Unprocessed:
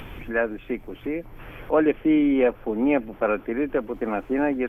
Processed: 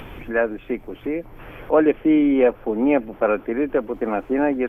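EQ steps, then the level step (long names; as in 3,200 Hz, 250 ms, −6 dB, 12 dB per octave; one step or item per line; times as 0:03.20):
parametric band 560 Hz +4 dB 2.6 octaves
0.0 dB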